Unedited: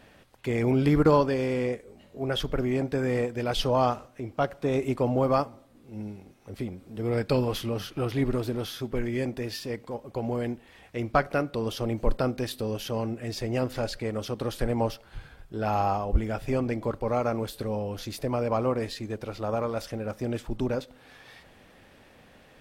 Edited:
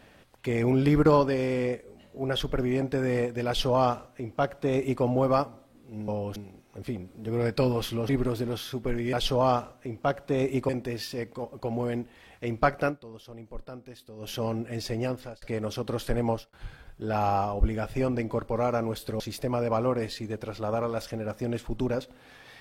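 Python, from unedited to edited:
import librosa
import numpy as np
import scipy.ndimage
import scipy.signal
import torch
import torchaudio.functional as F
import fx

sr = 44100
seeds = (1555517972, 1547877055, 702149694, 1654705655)

y = fx.edit(x, sr, fx.duplicate(start_s=3.47, length_s=1.56, to_s=9.21),
    fx.cut(start_s=7.81, length_s=0.36),
    fx.fade_down_up(start_s=11.4, length_s=1.41, db=-15.5, fade_s=0.14, curve='qua'),
    fx.fade_out_span(start_s=13.48, length_s=0.46),
    fx.fade_out_span(start_s=14.8, length_s=0.25),
    fx.move(start_s=17.72, length_s=0.28, to_s=6.08), tone=tone)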